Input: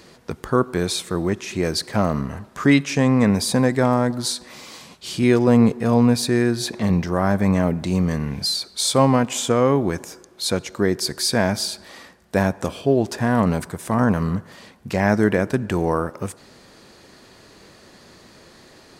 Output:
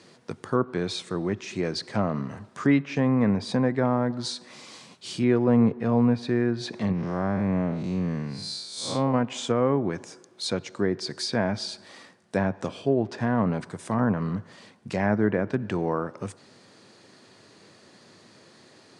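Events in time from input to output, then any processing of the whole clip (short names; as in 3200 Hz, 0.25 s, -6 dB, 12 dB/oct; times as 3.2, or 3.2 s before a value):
6.92–9.14 time blur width 0.176 s
whole clip: Chebyshev band-pass 100–9700 Hz, order 4; treble ducked by the level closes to 2000 Hz, closed at -14.5 dBFS; gain -5 dB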